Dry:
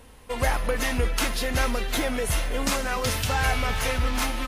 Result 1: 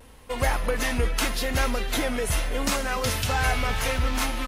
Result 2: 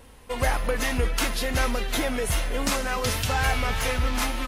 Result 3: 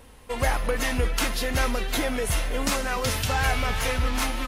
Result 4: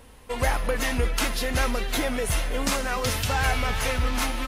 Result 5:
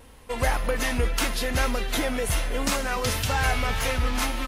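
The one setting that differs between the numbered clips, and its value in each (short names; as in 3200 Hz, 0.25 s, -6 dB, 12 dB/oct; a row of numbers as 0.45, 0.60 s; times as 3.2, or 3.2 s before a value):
vibrato, rate: 0.8, 3.5, 5.3, 8.8, 1.9 Hz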